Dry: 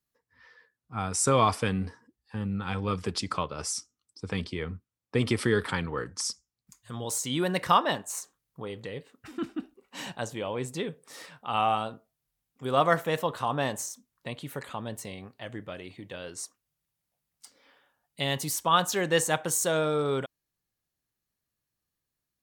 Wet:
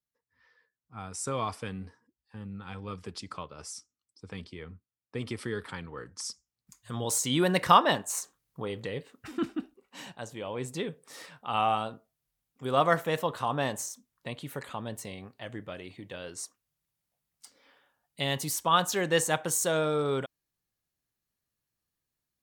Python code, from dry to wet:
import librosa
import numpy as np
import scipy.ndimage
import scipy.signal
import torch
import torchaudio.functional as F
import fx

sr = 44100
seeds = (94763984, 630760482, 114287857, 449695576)

y = fx.gain(x, sr, db=fx.line((5.92, -9.5), (6.98, 2.5), (9.45, 2.5), (10.14, -7.5), (10.72, -1.0)))